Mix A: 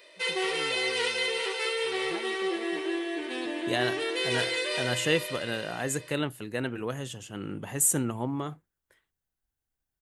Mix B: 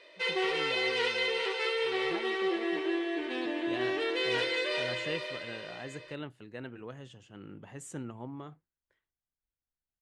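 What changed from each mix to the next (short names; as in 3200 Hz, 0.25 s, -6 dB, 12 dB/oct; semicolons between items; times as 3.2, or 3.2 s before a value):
second voice -10.5 dB; master: add air absorption 120 m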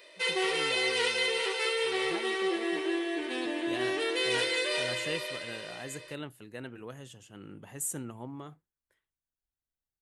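master: remove air absorption 120 m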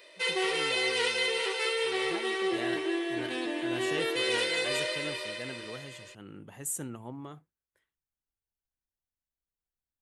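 second voice: entry -1.15 s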